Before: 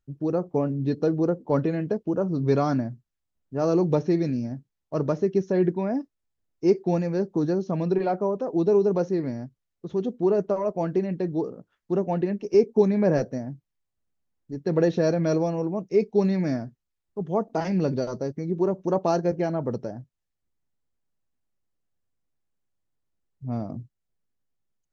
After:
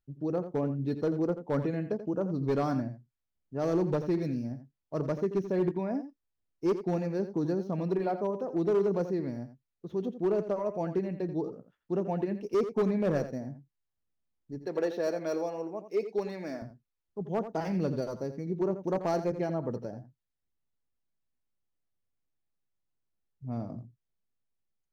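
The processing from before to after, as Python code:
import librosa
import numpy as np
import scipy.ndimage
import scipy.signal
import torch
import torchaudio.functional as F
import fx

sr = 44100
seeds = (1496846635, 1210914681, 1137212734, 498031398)

y = scipy.signal.medfilt(x, 5)
y = fx.highpass(y, sr, hz=390.0, slope=12, at=(14.62, 16.62))
y = np.clip(10.0 ** (16.0 / 20.0) * y, -1.0, 1.0) / 10.0 ** (16.0 / 20.0)
y = y + 10.0 ** (-11.5 / 20.0) * np.pad(y, (int(85 * sr / 1000.0), 0))[:len(y)]
y = y * 10.0 ** (-6.0 / 20.0)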